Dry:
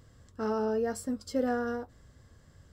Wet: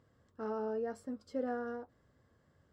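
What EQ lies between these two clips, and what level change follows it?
HPF 260 Hz 6 dB/oct; LPF 1400 Hz 6 dB/oct; -5.0 dB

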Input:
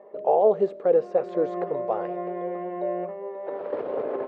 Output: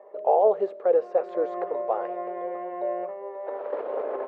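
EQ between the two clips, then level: HPF 540 Hz 12 dB/oct; high shelf 2500 Hz -10 dB; +3.0 dB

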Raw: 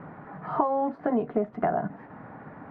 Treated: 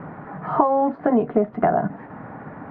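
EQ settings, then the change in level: air absorption 160 m; +7.5 dB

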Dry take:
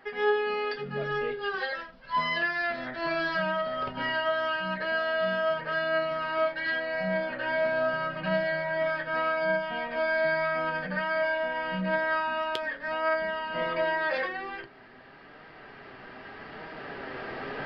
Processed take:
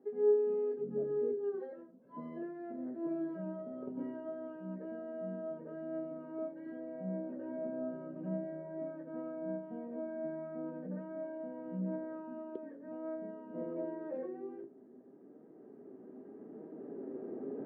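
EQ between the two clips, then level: Butterworth band-pass 300 Hz, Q 1.4; +1.5 dB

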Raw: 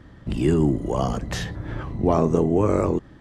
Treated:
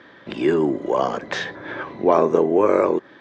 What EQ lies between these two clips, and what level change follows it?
dynamic EQ 3400 Hz, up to -6 dB, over -47 dBFS, Q 0.89; speaker cabinet 330–5900 Hz, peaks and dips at 380 Hz +4 dB, 550 Hz +5 dB, 1000 Hz +5 dB, 1600 Hz +9 dB, 2300 Hz +8 dB, 3600 Hz +9 dB; +2.5 dB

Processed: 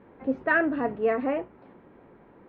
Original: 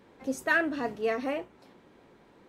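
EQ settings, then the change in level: LPF 2300 Hz 12 dB/oct; air absorption 350 m; +5.5 dB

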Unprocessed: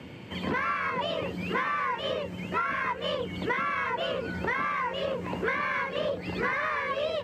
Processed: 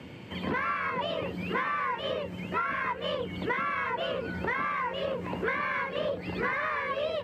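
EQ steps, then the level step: dynamic EQ 6600 Hz, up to -6 dB, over -55 dBFS, Q 1.1; -1.0 dB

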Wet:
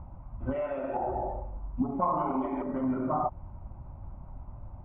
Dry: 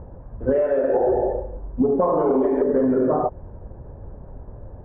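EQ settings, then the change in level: air absorption 87 m; bell 2000 Hz +10 dB 1.4 oct; fixed phaser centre 1700 Hz, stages 6; -4.5 dB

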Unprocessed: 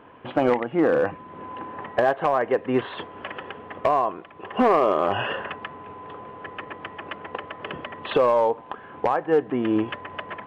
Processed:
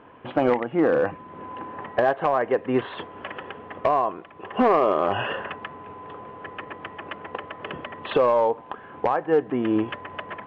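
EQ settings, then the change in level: air absorption 78 m; 0.0 dB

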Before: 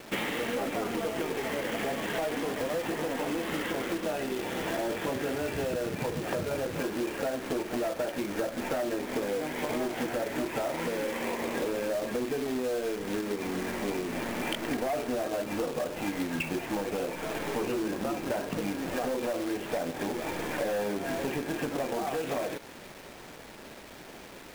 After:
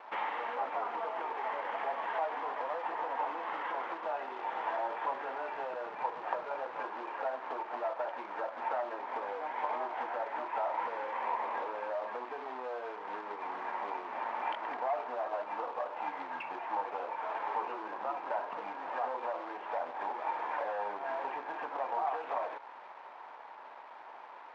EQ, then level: resonant high-pass 920 Hz, resonance Q 3.9; tape spacing loss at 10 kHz 45 dB; 0.0 dB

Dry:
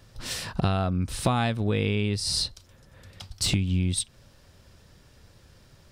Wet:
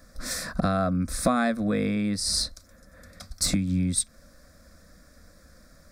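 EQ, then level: fixed phaser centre 590 Hz, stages 8; +5.0 dB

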